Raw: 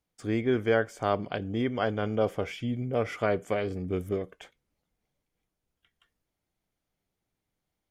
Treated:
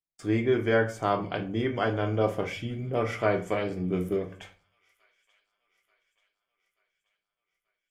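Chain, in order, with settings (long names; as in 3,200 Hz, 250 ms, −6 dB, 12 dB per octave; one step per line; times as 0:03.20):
noise gate with hold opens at −44 dBFS
delay with a high-pass on its return 884 ms, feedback 56%, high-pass 2,300 Hz, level −23.5 dB
on a send at −2 dB: convolution reverb RT60 0.40 s, pre-delay 3 ms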